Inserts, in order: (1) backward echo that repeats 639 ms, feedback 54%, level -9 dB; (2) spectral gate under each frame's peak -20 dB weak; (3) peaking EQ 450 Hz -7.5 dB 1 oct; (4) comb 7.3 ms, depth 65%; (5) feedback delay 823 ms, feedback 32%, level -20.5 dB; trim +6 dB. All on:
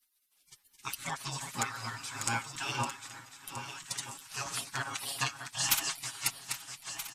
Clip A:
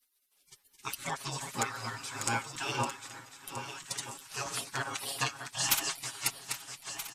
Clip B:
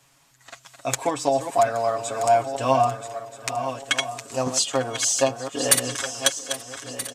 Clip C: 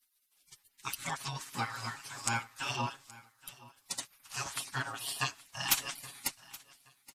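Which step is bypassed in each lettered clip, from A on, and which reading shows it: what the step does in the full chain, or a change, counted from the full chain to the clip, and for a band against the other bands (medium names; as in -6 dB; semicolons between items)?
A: 3, 500 Hz band +5.0 dB; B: 2, 500 Hz band +17.5 dB; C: 1, 8 kHz band -2.5 dB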